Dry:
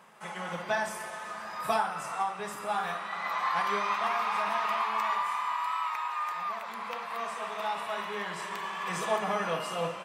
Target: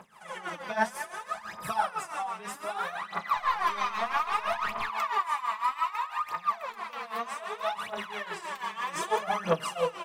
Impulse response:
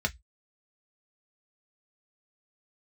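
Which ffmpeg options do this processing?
-filter_complex "[0:a]asettb=1/sr,asplit=3[s0][s1][s2];[s0]atrim=end=3.364[s3];[s1]atrim=start=3.36:end=4.89,asetpts=PTS-STARTPTS,afade=t=in:d=0.004:c=qsin,afade=t=out:st=1.526:d=0.004:c=qsin,aeval=exprs='0.133*(cos(1*acos(clip(val(0)/0.133,-1,1)))-cos(1*PI/2))+0.00473*(cos(4*acos(clip(val(0)/0.133,-1,1)))-cos(4*PI/2))':c=same[s4];[s2]atrim=start=4.886[s5];[s3][s4]acrossfade=d=0.004:c1=hsin:c2=qsin[s6];[s6][s5]acrossfade=d=0.004:c1=qsin:c2=hsin,aphaser=in_gain=1:out_gain=1:delay=4.7:decay=0.75:speed=0.63:type=triangular,tremolo=f=6:d=0.77"

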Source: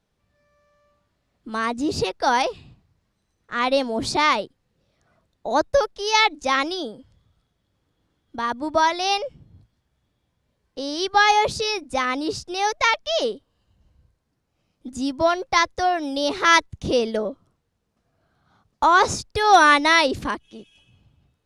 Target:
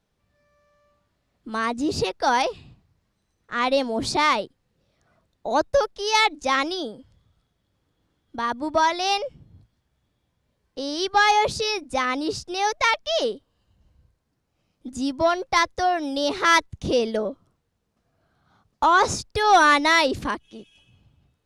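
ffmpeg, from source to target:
-af "acontrast=40,volume=0.501"

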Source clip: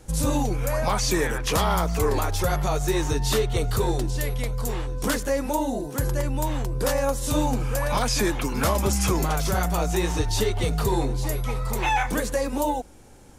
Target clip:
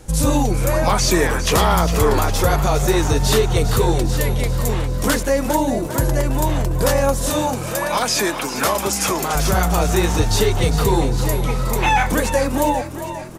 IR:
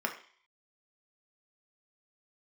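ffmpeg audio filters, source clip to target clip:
-filter_complex "[0:a]asettb=1/sr,asplit=3[s0][s1][s2];[s0]atrim=end=7.304[s3];[s1]atrim=start=7.3:end=9.35,asetpts=PTS-STARTPTS,afade=t=in:d=0.004:c=qsin,afade=t=out:st=2.046:d=0.004:c=qsin,highpass=f=450:p=1[s4];[s2]atrim=start=9.346[s5];[s3][s4]acrossfade=d=0.004:c1=hsin:c2=qsin[s6];[s6][s5]acrossfade=d=0.004:c1=qsin:c2=hsin,asplit=7[s7][s8][s9][s10][s11][s12][s13];[s8]adelay=404,afreqshift=42,volume=0.266[s14];[s9]adelay=808,afreqshift=84,volume=0.15[s15];[s10]adelay=1212,afreqshift=126,volume=0.0832[s16];[s11]adelay=1616,afreqshift=168,volume=0.0468[s17];[s12]adelay=2020,afreqshift=210,volume=0.0263[s18];[s13]adelay=2424,afreqshift=252,volume=0.0146[s19];[s7][s14][s15][s16][s17][s18][s19]amix=inputs=7:normalize=0,volume=2.11"

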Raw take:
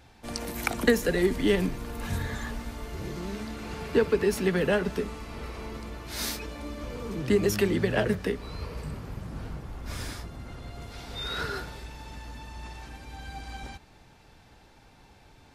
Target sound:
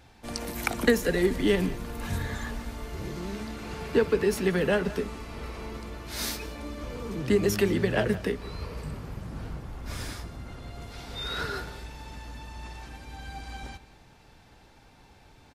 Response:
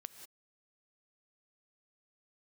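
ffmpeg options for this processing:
-filter_complex "[0:a]asplit=2[s0][s1];[s1]adelay=174.9,volume=0.141,highshelf=f=4000:g=-3.94[s2];[s0][s2]amix=inputs=2:normalize=0"

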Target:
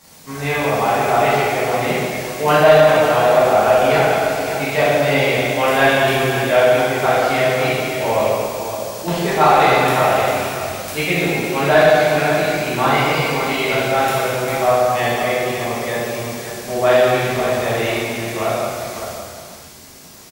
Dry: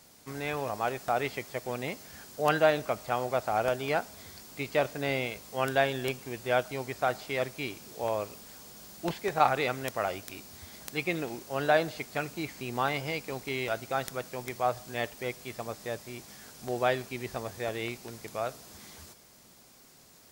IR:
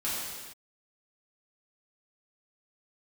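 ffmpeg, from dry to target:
-filter_complex "[0:a]aecho=1:1:561:0.316[s0];[1:a]atrim=start_sample=2205,asetrate=32193,aresample=44100[s1];[s0][s1]afir=irnorm=-1:irlink=0,acontrast=77,volume=0.891"

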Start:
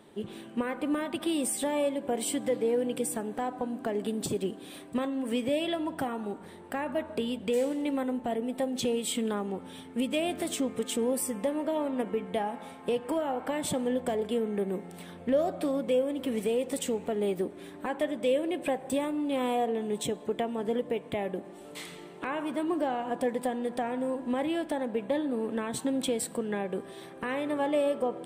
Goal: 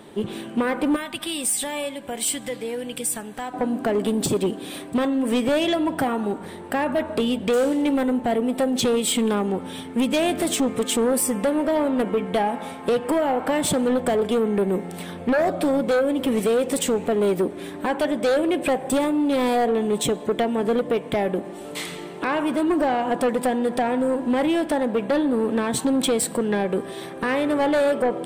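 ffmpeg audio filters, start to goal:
-filter_complex "[0:a]asettb=1/sr,asplit=3[s0][s1][s2];[s0]atrim=end=0.964[s3];[s1]atrim=start=0.96:end=3.54,asetpts=PTS-STARTPTS,afade=t=in:d=0.004:c=qsin,afade=t=out:st=2.576:d=0.004:c=qsin,equalizer=f=380:w=0.39:g=-14[s4];[s2]atrim=start=3.536[s5];[s3][s4]acrossfade=d=0.004:c1=hsin:c2=qsin[s6];[s6][s5]acrossfade=d=0.004:c1=qsin:c2=hsin,aeval=exprs='0.158*sin(PI/2*2.24*val(0)/0.158)':c=same"

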